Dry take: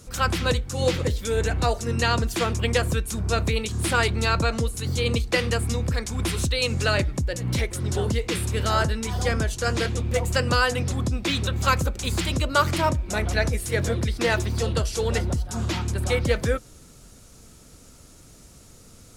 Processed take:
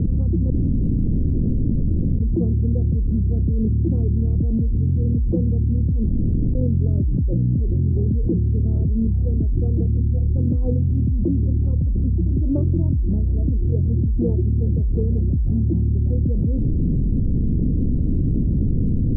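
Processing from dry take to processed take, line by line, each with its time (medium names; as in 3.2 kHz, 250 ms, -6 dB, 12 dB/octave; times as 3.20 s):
0.50–2.20 s: room tone
6.09–6.55 s: room tone
9.01–14.41 s: phaser 1 Hz, delay 3.7 ms, feedback 38%
whole clip: inverse Chebyshev low-pass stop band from 1.8 kHz, stop band 80 dB; level flattener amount 100%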